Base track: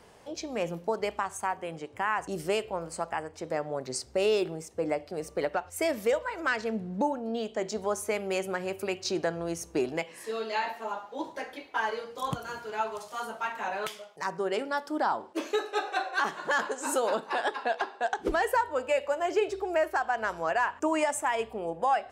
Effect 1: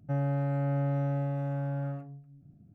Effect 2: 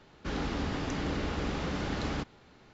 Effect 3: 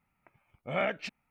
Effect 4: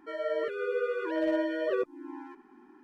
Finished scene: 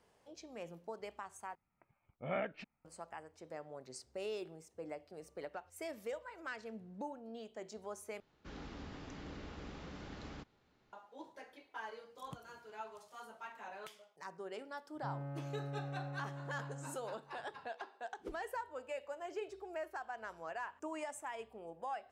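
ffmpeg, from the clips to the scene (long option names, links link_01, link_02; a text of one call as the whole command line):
ffmpeg -i bed.wav -i cue0.wav -i cue1.wav -i cue2.wav -filter_complex "[0:a]volume=-16dB[link_01];[3:a]lowpass=frequency=1400:poles=1[link_02];[1:a]equalizer=frequency=1100:width_type=o:width=0.36:gain=7[link_03];[link_01]asplit=3[link_04][link_05][link_06];[link_04]atrim=end=1.554[link_07];[link_02]atrim=end=1.3,asetpts=PTS-STARTPTS,volume=-6dB[link_08];[link_05]atrim=start=2.846:end=8.204[link_09];[2:a]atrim=end=2.73,asetpts=PTS-STARTPTS,volume=-15.5dB[link_10];[link_06]atrim=start=10.926[link_11];[link_03]atrim=end=2.74,asetpts=PTS-STARTPTS,volume=-14.5dB,afade=type=in:duration=0.004:curve=hsin,afade=type=out:start_time=2.736:duration=0.004:curve=hsin,adelay=14940[link_12];[link_07][link_08]acrossfade=duration=0.004:curve1=hsin:curve2=hsin[link_13];[link_13][link_09]acrossfade=duration=0.004:curve1=hsin:curve2=hsin[link_14];[link_14][link_10]acrossfade=duration=0.004:curve1=hsin:curve2=hsin[link_15];[link_15][link_11]acrossfade=duration=0.004:curve1=hsin:curve2=hsin[link_16];[link_16][link_12]amix=inputs=2:normalize=0" out.wav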